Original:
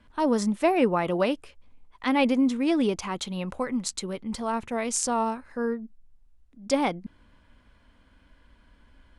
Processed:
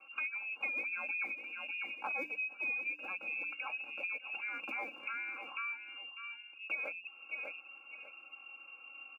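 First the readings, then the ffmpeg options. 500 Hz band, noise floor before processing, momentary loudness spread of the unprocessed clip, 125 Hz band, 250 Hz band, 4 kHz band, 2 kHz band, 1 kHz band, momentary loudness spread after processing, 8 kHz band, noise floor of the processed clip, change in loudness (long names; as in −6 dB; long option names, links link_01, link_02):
−25.5 dB, −59 dBFS, 10 LU, below −35 dB, −33.5 dB, below −10 dB, +1.5 dB, −17.5 dB, 14 LU, below −40 dB, −56 dBFS, −12.0 dB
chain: -filter_complex "[0:a]asuperstop=centerf=890:order=8:qfactor=1.3,lowpass=frequency=2400:width_type=q:width=0.5098,lowpass=frequency=2400:width_type=q:width=0.6013,lowpass=frequency=2400:width_type=q:width=0.9,lowpass=frequency=2400:width_type=q:width=2.563,afreqshift=-2800,equalizer=frequency=350:width=1.3:gain=5,bandreject=frequency=60:width_type=h:width=6,bandreject=frequency=120:width_type=h:width=6,bandreject=frequency=180:width_type=h:width=6,bandreject=frequency=240:width_type=h:width=6,bandreject=frequency=300:width_type=h:width=6,aecho=1:1:598|1196:0.168|0.0353,acrossover=split=300|890[link_01][link_02][link_03];[link_01]acrusher=samples=34:mix=1:aa=0.000001[link_04];[link_04][link_02][link_03]amix=inputs=3:normalize=0,aecho=1:1:3.7:0.94,acompressor=threshold=-38dB:ratio=5,highpass=160"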